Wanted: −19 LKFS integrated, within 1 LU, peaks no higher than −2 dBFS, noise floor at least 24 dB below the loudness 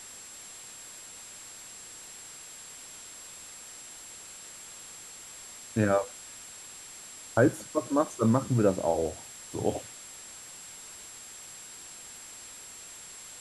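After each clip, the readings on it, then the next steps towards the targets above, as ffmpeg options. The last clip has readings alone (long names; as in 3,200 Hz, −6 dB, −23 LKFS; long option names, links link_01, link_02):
interfering tone 7,600 Hz; level of the tone −46 dBFS; background noise floor −47 dBFS; target noise floor −58 dBFS; integrated loudness −33.5 LKFS; sample peak −10.0 dBFS; target loudness −19.0 LKFS
→ -af "bandreject=frequency=7600:width=30"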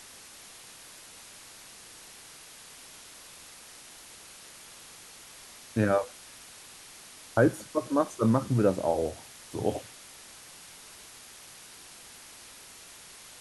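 interfering tone none found; background noise floor −50 dBFS; target noise floor −53 dBFS
→ -af "afftdn=noise_reduction=6:noise_floor=-50"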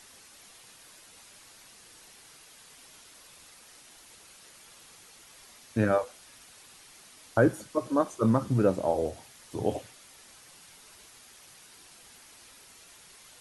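background noise floor −54 dBFS; integrated loudness −28.5 LKFS; sample peak −10.0 dBFS; target loudness −19.0 LKFS
→ -af "volume=9.5dB,alimiter=limit=-2dB:level=0:latency=1"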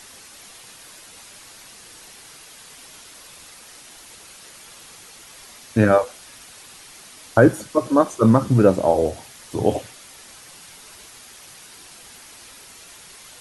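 integrated loudness −19.0 LKFS; sample peak −2.0 dBFS; background noise floor −45 dBFS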